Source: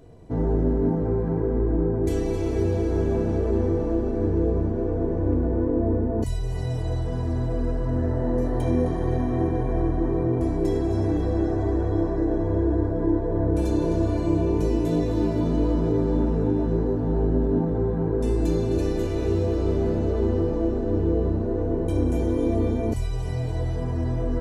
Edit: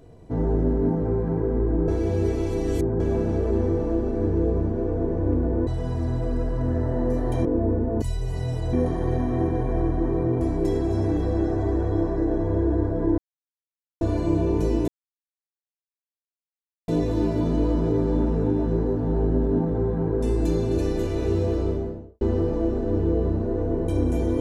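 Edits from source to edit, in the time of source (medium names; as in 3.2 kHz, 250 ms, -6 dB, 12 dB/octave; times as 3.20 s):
1.88–3.00 s: reverse
5.67–6.95 s: move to 8.73 s
13.18–14.01 s: mute
14.88 s: insert silence 2.00 s
19.50–20.21 s: studio fade out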